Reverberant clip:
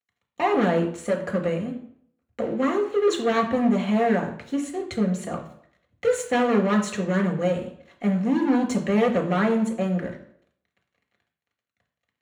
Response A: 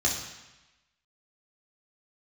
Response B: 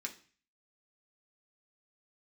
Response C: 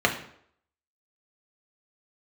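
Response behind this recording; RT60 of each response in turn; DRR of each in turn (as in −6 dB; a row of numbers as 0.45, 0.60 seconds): C; 1.0, 0.40, 0.65 seconds; −3.5, 0.5, 0.5 decibels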